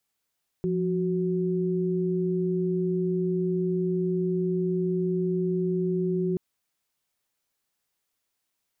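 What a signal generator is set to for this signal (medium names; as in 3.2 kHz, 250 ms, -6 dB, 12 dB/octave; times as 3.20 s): chord F3/F#4 sine, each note -26 dBFS 5.73 s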